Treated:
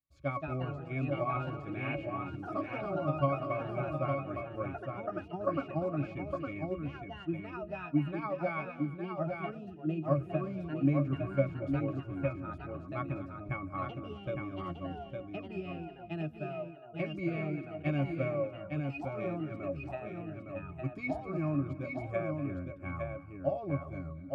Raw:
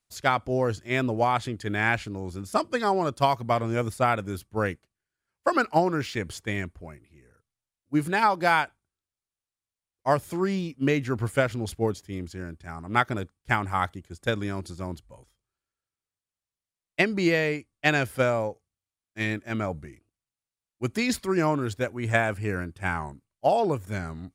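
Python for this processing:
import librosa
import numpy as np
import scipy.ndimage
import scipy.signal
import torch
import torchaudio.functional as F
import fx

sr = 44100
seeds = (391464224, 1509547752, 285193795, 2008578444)

p1 = fx.octave_resonator(x, sr, note='C#', decay_s=0.11)
p2 = fx.echo_pitch(p1, sr, ms=202, semitones=2, count=2, db_per_echo=-6.0)
y = p2 + fx.echo_multitap(p2, sr, ms=(236, 349, 860), db=(-15.5, -19.0, -5.0), dry=0)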